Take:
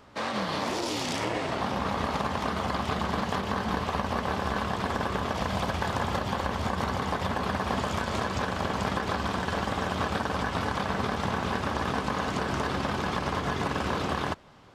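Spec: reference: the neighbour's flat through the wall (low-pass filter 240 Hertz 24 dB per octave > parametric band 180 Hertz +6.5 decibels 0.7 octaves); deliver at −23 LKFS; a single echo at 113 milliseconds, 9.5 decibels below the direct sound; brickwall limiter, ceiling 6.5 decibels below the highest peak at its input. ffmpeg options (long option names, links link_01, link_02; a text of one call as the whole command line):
ffmpeg -i in.wav -af "alimiter=limit=-21.5dB:level=0:latency=1,lowpass=frequency=240:width=0.5412,lowpass=frequency=240:width=1.3066,equalizer=frequency=180:width_type=o:width=0.7:gain=6.5,aecho=1:1:113:0.335,volume=12dB" out.wav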